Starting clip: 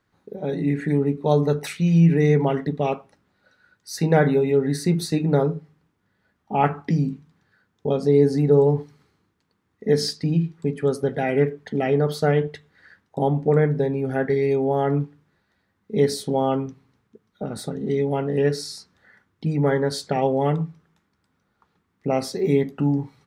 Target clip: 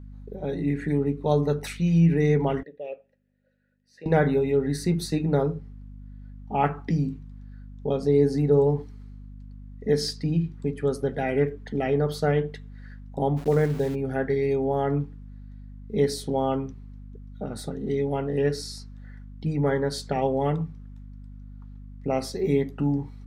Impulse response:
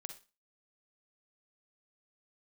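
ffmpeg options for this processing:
-filter_complex "[0:a]asplit=3[a][b][c];[a]afade=t=out:st=13.36:d=0.02[d];[b]aeval=exprs='val(0)*gte(abs(val(0)),0.0211)':c=same,afade=t=in:st=13.36:d=0.02,afade=t=out:st=13.94:d=0.02[e];[c]afade=t=in:st=13.94:d=0.02[f];[d][e][f]amix=inputs=3:normalize=0,aeval=exprs='val(0)+0.0141*(sin(2*PI*50*n/s)+sin(2*PI*2*50*n/s)/2+sin(2*PI*3*50*n/s)/3+sin(2*PI*4*50*n/s)/4+sin(2*PI*5*50*n/s)/5)':c=same,asettb=1/sr,asplit=3[g][h][i];[g]atrim=end=2.634[j];[h]atrim=start=2.63:end=4.06,asetpts=PTS-STARTPTS,afade=t=in:d=0.004:c=qsin,afade=t=out:st=1.426:d=0.004:c=qsin,asplit=3[k][l][m];[k]bandpass=f=530:t=q:w=8,volume=0dB[n];[l]bandpass=f=1.84k:t=q:w=8,volume=-6dB[o];[m]bandpass=f=2.48k:t=q:w=8,volume=-9dB[p];[n][o][p]amix=inputs=3:normalize=0[q];[i]atrim=start=4.056[r];[j][q]acrossfade=d=0.004:c1=hsin:c2=qsin[s];[s][r]acrossfade=d=0.004:c1=qsin:c2=hsin,volume=-3.5dB"

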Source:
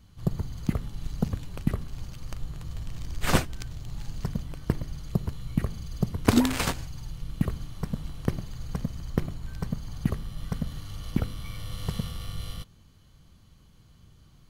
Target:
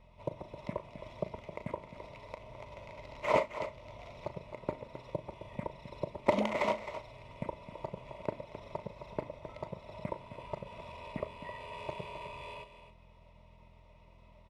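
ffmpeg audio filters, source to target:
-filter_complex "[0:a]asplit=3[a][b][c];[a]bandpass=f=730:t=q:w=8,volume=0dB[d];[b]bandpass=f=1.09k:t=q:w=8,volume=-6dB[e];[c]bandpass=f=2.44k:t=q:w=8,volume=-9dB[f];[d][e][f]amix=inputs=3:normalize=0,aeval=exprs='val(0)+0.0002*(sin(2*PI*50*n/s)+sin(2*PI*2*50*n/s)/2+sin(2*PI*3*50*n/s)/3+sin(2*PI*4*50*n/s)/4+sin(2*PI*5*50*n/s)/5)':c=same,asetrate=37084,aresample=44100,atempo=1.18921,asplit=2[g][h];[h]acompressor=threshold=-58dB:ratio=6,volume=0.5dB[i];[g][i]amix=inputs=2:normalize=0,asplit=2[j][k];[k]adelay=38,volume=-13dB[l];[j][l]amix=inputs=2:normalize=0,aecho=1:1:264:0.282,volume=8.5dB"

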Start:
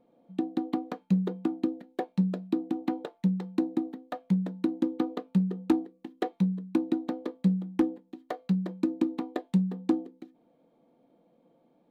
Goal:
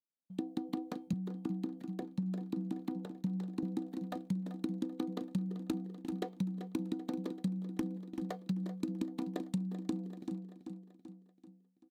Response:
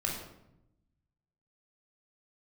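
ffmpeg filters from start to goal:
-filter_complex "[0:a]agate=range=-40dB:threshold=-52dB:ratio=16:detection=peak,aecho=1:1:386|772|1158|1544|1930:0.282|0.141|0.0705|0.0352|0.0176,asettb=1/sr,asplit=3[a][b][c];[a]atrim=end=1.134[d];[b]atrim=start=1.13:end=3.63,asetpts=PTS-STARTPTS,afade=t=in:d=0.004:c=qsin,afade=t=out:st=2.496:d=0.004:c=qsin,acrossover=split=360|740|1600[e][f][g][h];[e]acompressor=threshold=-25dB:ratio=4[i];[f]acompressor=threshold=-48dB:ratio=4[j];[g]acompressor=threshold=-45dB:ratio=4[k];[h]acompressor=threshold=-56dB:ratio=4[l];[i][j][k][l]amix=inputs=4:normalize=0[m];[c]atrim=start=3.626[n];[d][m]acrossfade=d=0.004:c1=hsin:c2=qsin[o];[o][n]acrossfade=d=0.004:c1=qsin:c2=hsin,bass=f=250:g=8,treble=f=4k:g=11,acompressor=threshold=-24dB:ratio=12,volume=-7.5dB"

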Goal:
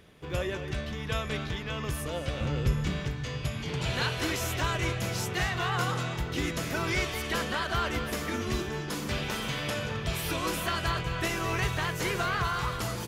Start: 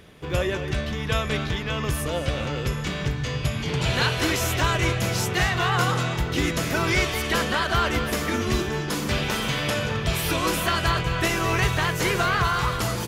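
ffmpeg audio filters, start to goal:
-filter_complex "[0:a]asettb=1/sr,asplit=3[a][b][c];[a]atrim=end=2.414[d];[b]atrim=start=2.41:end=3,asetpts=PTS-STARTPTS,afade=t=in:d=0.004:c=qsin,afade=t=out:st=0.586:d=0.004:c=qsin,lowshelf=f=250:g=9.5[e];[c]atrim=start=2.996[f];[d][e]acrossfade=d=0.004:c1=hsin:c2=qsin[g];[g][f]acrossfade=d=0.004:c1=qsin:c2=hsin,volume=-7dB"

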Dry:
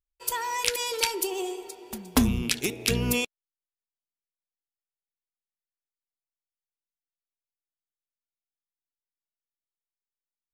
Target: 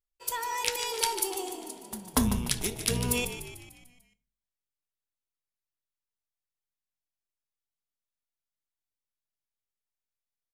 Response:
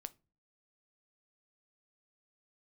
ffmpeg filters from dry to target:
-filter_complex "[0:a]asettb=1/sr,asplit=3[a][b][c];[a]atrim=end=0.914[d];[b]atrim=start=0.91:end=3.16,asetpts=PTS-STARTPTS,afade=t=in:d=0.004:c=qsin,afade=t=out:st=2.246:d=0.004:c=qsin,equalizer=f=315:t=o:w=0.33:g=-8,equalizer=f=1k:t=o:w=0.33:g=5,equalizer=f=2.5k:t=o:w=0.33:g=-7,equalizer=f=10k:t=o:w=0.33:g=8[e];[c]atrim=start=3.156[f];[d][e]acrossfade=d=0.004:c1=hsin:c2=qsin[g];[g][f]acrossfade=d=0.004:c1=qsin:c2=hsin,asplit=7[h][i][j][k][l][m][n];[i]adelay=148,afreqshift=-48,volume=-10dB[o];[j]adelay=296,afreqshift=-96,volume=-15.5dB[p];[k]adelay=444,afreqshift=-144,volume=-21dB[q];[l]adelay=592,afreqshift=-192,volume=-26.5dB[r];[m]adelay=740,afreqshift=-240,volume=-32.1dB[s];[n]adelay=888,afreqshift=-288,volume=-37.6dB[t];[h][o][p][q][r][s][t]amix=inputs=7:normalize=0[u];[1:a]atrim=start_sample=2205,asetrate=33075,aresample=44100[v];[u][v]afir=irnorm=-1:irlink=0"

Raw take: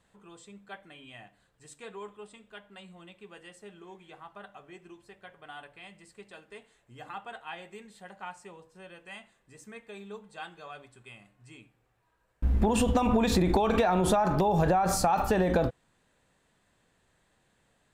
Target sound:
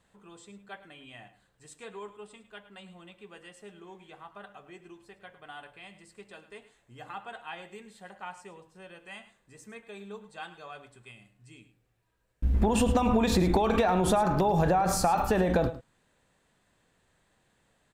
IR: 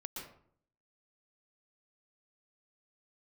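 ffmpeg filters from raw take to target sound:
-filter_complex "[0:a]asettb=1/sr,asplit=3[a][b][c];[a]atrim=end=11.114[d];[b]atrim=start=11.11:end=12.54,asetpts=PTS-STARTPTS,afade=t=in:d=0.004:c=qsin,afade=t=out:st=1.426:d=0.004:c=qsin,equalizer=f=990:t=o:w=1.8:g=-8.5[e];[c]atrim=start=12.536[f];[d][e]acrossfade=d=0.004:c1=hsin:c2=qsin[g];[g][f]acrossfade=d=0.004:c1=qsin:c2=hsin,aecho=1:1:106:0.188"

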